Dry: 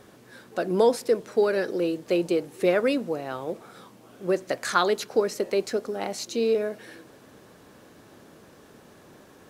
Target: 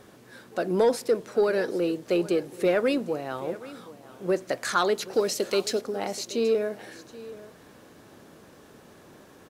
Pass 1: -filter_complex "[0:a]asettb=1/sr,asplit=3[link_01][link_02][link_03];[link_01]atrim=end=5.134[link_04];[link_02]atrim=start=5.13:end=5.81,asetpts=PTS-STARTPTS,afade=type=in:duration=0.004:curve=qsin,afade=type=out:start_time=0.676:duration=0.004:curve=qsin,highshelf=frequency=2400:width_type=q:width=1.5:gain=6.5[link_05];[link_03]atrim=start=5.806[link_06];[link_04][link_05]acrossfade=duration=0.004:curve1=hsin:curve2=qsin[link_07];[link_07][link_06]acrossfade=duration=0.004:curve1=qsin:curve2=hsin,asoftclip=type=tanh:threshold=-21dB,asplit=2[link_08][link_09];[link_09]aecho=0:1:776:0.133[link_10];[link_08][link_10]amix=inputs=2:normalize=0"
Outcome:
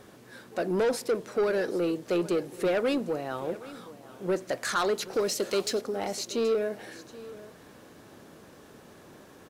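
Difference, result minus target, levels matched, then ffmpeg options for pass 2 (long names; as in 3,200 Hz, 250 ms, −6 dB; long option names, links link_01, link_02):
soft clipping: distortion +10 dB
-filter_complex "[0:a]asettb=1/sr,asplit=3[link_01][link_02][link_03];[link_01]atrim=end=5.134[link_04];[link_02]atrim=start=5.13:end=5.81,asetpts=PTS-STARTPTS,afade=type=in:duration=0.004:curve=qsin,afade=type=out:start_time=0.676:duration=0.004:curve=qsin,highshelf=frequency=2400:width_type=q:width=1.5:gain=6.5[link_05];[link_03]atrim=start=5.806[link_06];[link_04][link_05]acrossfade=duration=0.004:curve1=hsin:curve2=qsin[link_07];[link_07][link_06]acrossfade=duration=0.004:curve1=qsin:curve2=hsin,asoftclip=type=tanh:threshold=-12.5dB,asplit=2[link_08][link_09];[link_09]aecho=0:1:776:0.133[link_10];[link_08][link_10]amix=inputs=2:normalize=0"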